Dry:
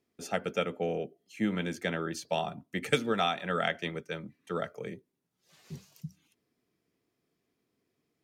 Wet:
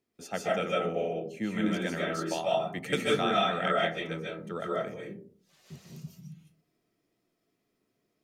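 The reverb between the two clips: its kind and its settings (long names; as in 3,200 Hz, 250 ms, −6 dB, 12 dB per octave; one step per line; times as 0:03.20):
comb and all-pass reverb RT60 0.48 s, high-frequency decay 0.35×, pre-delay 110 ms, DRR −4.5 dB
level −3.5 dB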